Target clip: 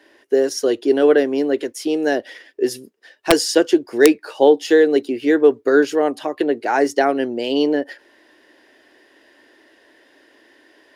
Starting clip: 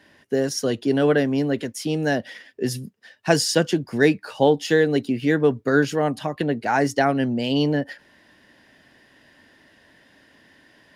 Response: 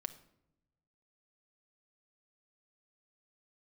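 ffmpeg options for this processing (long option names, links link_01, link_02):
-af "lowshelf=frequency=240:width_type=q:width=3:gain=-13,aeval=exprs='(mod(1.26*val(0)+1,2)-1)/1.26':channel_layout=same,volume=1dB"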